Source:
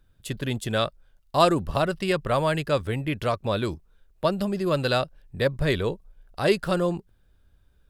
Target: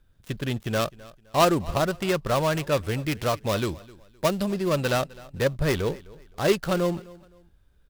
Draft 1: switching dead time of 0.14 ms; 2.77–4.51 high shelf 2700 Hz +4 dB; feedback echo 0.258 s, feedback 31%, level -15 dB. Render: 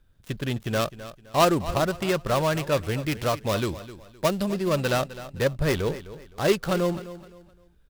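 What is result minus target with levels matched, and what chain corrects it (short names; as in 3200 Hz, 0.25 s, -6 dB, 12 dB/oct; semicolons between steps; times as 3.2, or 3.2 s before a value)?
echo-to-direct +6.5 dB
switching dead time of 0.14 ms; 2.77–4.51 high shelf 2700 Hz +4 dB; feedback echo 0.258 s, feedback 31%, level -21.5 dB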